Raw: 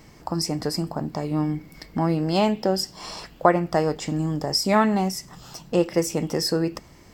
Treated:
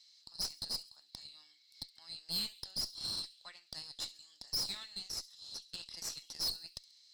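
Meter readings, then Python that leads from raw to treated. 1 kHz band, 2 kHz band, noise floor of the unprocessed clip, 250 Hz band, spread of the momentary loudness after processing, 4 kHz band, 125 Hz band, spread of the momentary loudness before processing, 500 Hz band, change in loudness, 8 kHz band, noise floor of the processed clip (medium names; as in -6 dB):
-32.5 dB, -22.5 dB, -50 dBFS, -35.0 dB, 14 LU, -6.5 dB, -31.0 dB, 13 LU, -37.0 dB, -15.5 dB, -10.5 dB, -67 dBFS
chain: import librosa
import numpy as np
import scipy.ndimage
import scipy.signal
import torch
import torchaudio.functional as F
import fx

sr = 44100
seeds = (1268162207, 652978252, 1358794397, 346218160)

y = fx.ladder_bandpass(x, sr, hz=4200.0, resonance_pct=85)
y = fx.high_shelf(y, sr, hz=4500.0, db=5.5)
y = fx.tube_stage(y, sr, drive_db=34.0, bias=0.65)
y = fx.echo_wet_highpass(y, sr, ms=68, feedback_pct=46, hz=5200.0, wet_db=-17.0)
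y = y * librosa.db_to_amplitude(2.5)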